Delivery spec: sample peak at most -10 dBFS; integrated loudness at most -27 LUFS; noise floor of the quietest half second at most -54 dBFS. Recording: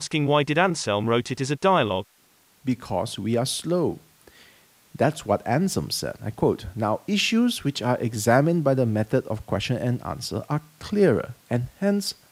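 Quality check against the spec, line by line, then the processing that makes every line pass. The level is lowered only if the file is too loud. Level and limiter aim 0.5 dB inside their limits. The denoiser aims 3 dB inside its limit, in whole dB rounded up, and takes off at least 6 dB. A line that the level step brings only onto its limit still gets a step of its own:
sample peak -6.5 dBFS: fail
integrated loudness -24.0 LUFS: fail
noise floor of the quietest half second -60 dBFS: pass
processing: trim -3.5 dB; peak limiter -10.5 dBFS

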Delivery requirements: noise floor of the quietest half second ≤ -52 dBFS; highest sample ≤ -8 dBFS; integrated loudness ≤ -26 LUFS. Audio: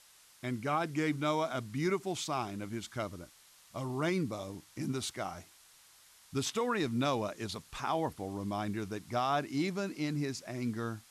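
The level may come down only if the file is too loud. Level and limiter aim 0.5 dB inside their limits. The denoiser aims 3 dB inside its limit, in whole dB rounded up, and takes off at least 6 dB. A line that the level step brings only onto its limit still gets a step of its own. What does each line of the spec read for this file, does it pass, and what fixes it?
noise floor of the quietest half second -61 dBFS: pass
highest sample -21.0 dBFS: pass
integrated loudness -35.5 LUFS: pass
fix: none needed

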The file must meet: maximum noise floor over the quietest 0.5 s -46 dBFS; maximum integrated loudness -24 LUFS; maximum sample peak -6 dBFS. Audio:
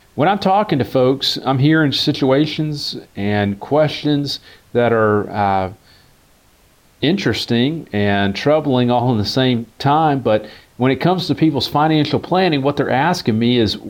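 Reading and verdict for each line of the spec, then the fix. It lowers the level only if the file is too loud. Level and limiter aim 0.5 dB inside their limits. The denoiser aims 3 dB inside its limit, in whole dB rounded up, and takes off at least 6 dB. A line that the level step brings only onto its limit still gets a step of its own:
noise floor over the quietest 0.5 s -52 dBFS: pass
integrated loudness -16.5 LUFS: fail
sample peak -5.0 dBFS: fail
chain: trim -8 dB

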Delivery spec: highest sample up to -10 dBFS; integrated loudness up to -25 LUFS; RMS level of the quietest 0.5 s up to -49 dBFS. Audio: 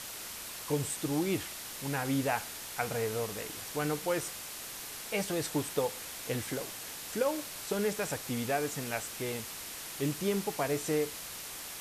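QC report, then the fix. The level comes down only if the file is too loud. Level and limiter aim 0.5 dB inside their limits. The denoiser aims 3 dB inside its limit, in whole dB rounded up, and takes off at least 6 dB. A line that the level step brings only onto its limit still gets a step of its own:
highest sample -16.5 dBFS: pass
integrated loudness -34.5 LUFS: pass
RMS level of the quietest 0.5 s -43 dBFS: fail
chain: noise reduction 9 dB, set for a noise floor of -43 dBFS

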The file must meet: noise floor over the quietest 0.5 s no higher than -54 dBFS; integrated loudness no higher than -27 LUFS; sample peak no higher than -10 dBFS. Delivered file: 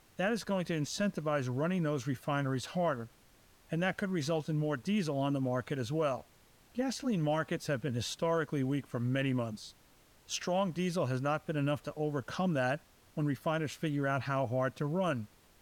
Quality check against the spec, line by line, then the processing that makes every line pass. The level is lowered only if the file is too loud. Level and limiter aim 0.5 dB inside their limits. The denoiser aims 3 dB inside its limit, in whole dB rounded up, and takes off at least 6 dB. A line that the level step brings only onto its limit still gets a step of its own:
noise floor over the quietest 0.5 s -63 dBFS: pass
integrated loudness -34.0 LUFS: pass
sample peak -20.5 dBFS: pass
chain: none needed

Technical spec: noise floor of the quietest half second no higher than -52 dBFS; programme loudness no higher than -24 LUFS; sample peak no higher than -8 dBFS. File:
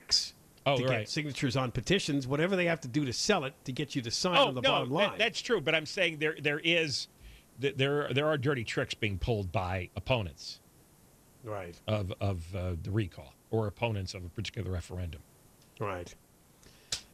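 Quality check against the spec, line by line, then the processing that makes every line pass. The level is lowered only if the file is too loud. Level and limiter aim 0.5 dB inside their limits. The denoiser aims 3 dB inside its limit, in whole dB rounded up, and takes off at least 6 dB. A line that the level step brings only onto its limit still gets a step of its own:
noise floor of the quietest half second -61 dBFS: pass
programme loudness -31.5 LUFS: pass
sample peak -12.5 dBFS: pass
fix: none needed

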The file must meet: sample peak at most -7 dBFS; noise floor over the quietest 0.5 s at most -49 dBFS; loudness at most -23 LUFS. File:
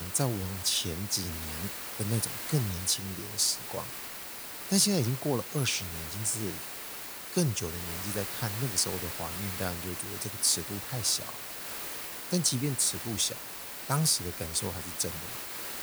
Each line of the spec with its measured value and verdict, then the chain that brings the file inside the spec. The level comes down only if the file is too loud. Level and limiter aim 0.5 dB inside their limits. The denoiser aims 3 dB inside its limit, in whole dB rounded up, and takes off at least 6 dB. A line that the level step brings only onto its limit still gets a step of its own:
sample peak -12.0 dBFS: pass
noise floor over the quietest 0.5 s -42 dBFS: fail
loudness -30.5 LUFS: pass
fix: noise reduction 10 dB, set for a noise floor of -42 dBFS

